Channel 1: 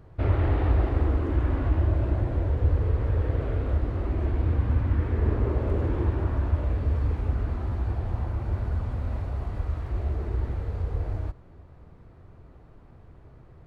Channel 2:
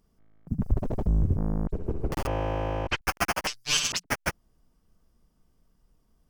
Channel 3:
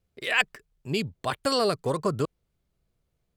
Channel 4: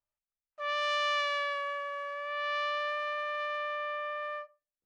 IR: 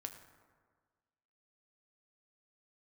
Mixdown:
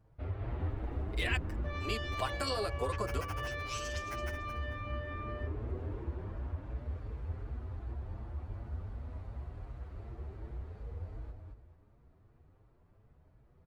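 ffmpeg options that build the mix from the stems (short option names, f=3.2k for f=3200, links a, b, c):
-filter_complex "[0:a]volume=-8dB,asplit=2[a][b];[b]volume=-9dB[c];[1:a]volume=-16dB,asplit=2[d][e];[e]volume=-10dB[f];[2:a]highpass=370,acompressor=threshold=-29dB:ratio=6,adelay=950,volume=-0.5dB[g];[3:a]adelay=1050,volume=1.5dB[h];[a][h]amix=inputs=2:normalize=0,flanger=delay=1.2:depth=4.8:regen=-71:speed=0.15:shape=triangular,alimiter=level_in=2.5dB:limit=-24dB:level=0:latency=1:release=195,volume=-2.5dB,volume=0dB[i];[c][f]amix=inputs=2:normalize=0,aecho=0:1:220|440|660|880:1|0.27|0.0729|0.0197[j];[d][g][i][j]amix=inputs=4:normalize=0,asplit=2[k][l];[l]adelay=7.2,afreqshift=2.7[m];[k][m]amix=inputs=2:normalize=1"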